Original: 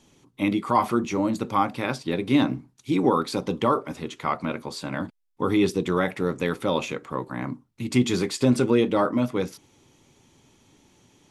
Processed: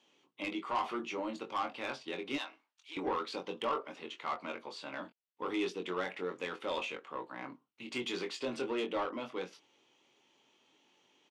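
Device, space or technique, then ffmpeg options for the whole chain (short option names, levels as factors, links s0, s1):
intercom: -filter_complex "[0:a]highpass=420,lowpass=4600,equalizer=f=2900:t=o:w=0.38:g=7.5,asoftclip=type=tanh:threshold=0.112,asplit=2[s0][s1];[s1]adelay=22,volume=0.501[s2];[s0][s2]amix=inputs=2:normalize=0,asettb=1/sr,asplit=3[s3][s4][s5];[s3]atrim=end=2.384[s6];[s4]atrim=start=2.38:end=2.97,asetpts=PTS-STARTPTS,afade=t=in:d=0.004:c=qsin,afade=t=out:st=0.586:d=0.004:c=qsin,highpass=1000[s7];[s5]atrim=start=2.966[s8];[s6][s7]acrossfade=d=0.004:c1=hsin:c2=qsin[s9];[s9][s8]acrossfade=d=0.004:c1=qsin:c2=hsin,volume=0.355"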